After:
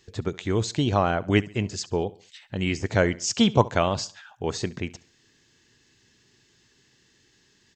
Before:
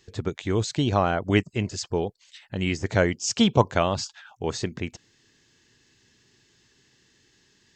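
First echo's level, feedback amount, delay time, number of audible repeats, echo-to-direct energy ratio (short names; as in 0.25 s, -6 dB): -20.5 dB, 38%, 69 ms, 2, -20.0 dB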